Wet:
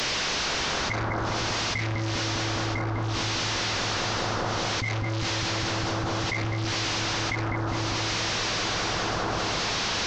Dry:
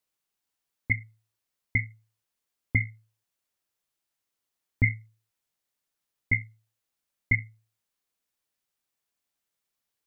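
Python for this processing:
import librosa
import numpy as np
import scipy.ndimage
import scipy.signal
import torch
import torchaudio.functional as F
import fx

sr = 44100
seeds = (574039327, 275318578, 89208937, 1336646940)

p1 = fx.delta_mod(x, sr, bps=32000, step_db=-25.0)
p2 = fx.tremolo_shape(p1, sr, shape='triangle', hz=0.62, depth_pct=90)
p3 = p2 + fx.echo_bbd(p2, sr, ms=203, stages=2048, feedback_pct=85, wet_db=-3.0, dry=0)
p4 = fx.env_flatten(p3, sr, amount_pct=100)
y = p4 * 10.0 ** (-4.5 / 20.0)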